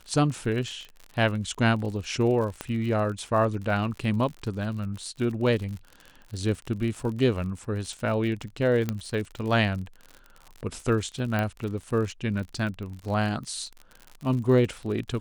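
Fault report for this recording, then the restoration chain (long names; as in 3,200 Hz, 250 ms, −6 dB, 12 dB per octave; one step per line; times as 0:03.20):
surface crackle 54 per second −34 dBFS
0:02.61: click −16 dBFS
0:08.89: click −14 dBFS
0:11.39: click −15 dBFS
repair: click removal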